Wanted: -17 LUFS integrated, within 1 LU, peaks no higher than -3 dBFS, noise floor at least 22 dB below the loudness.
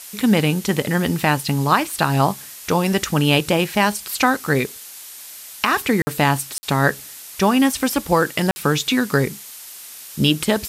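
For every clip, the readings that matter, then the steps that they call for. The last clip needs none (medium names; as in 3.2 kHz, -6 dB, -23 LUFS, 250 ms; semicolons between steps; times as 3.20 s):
dropouts 3; longest dropout 50 ms; noise floor -38 dBFS; noise floor target -41 dBFS; loudness -19.0 LUFS; peak level -2.5 dBFS; loudness target -17.0 LUFS
-> interpolate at 6.02/6.58/8.51 s, 50 ms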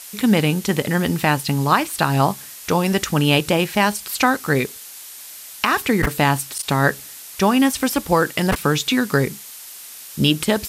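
dropouts 0; noise floor -38 dBFS; noise floor target -41 dBFS
-> noise reduction 6 dB, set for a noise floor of -38 dBFS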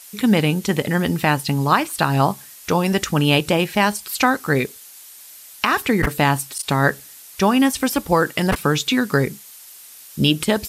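noise floor -42 dBFS; loudness -19.5 LUFS; peak level -2.5 dBFS; loudness target -17.0 LUFS
-> trim +2.5 dB; peak limiter -3 dBFS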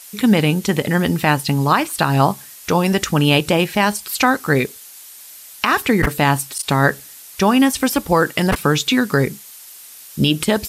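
loudness -17.5 LUFS; peak level -3.0 dBFS; noise floor -40 dBFS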